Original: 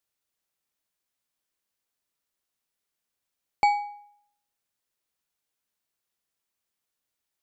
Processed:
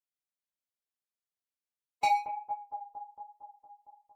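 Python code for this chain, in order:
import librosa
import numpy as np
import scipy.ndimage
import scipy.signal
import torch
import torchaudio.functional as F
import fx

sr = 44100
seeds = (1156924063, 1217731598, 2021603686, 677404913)

y = fx.low_shelf(x, sr, hz=66.0, db=-6.0)
y = fx.leveller(y, sr, passes=3)
y = fx.echo_bbd(y, sr, ms=409, stages=4096, feedback_pct=70, wet_db=-10.0)
y = fx.chorus_voices(y, sr, voices=2, hz=0.64, base_ms=29, depth_ms=4.1, mix_pct=50)
y = fx.stretch_vocoder(y, sr, factor=0.56)
y = F.gain(torch.from_numpy(y), -4.0).numpy()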